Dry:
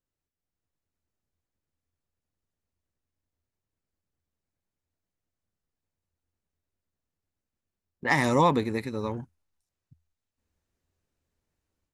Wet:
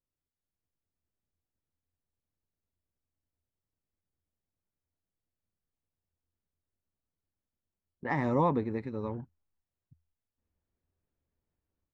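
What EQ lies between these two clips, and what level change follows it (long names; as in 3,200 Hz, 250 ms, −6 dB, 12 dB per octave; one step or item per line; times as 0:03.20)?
dynamic equaliser 3,300 Hz, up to −5 dB, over −41 dBFS, Q 0.87
head-to-tape spacing loss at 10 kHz 32 dB
−3.0 dB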